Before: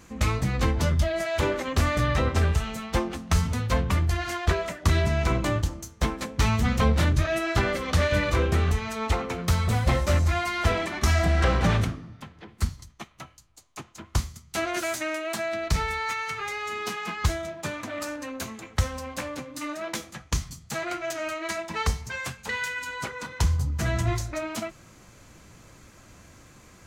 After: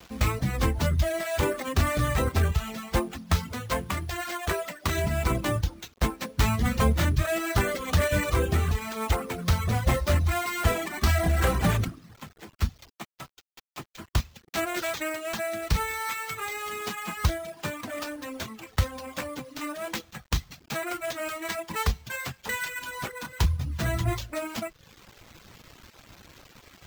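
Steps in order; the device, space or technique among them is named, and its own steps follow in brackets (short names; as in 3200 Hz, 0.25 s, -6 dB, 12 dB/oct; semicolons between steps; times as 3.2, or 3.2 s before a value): early 8-bit sampler (sample-rate reducer 10000 Hz, jitter 0%; bit-crush 8-bit); reverb removal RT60 0.63 s; 3.35–4.98 low shelf 160 Hz -11.5 dB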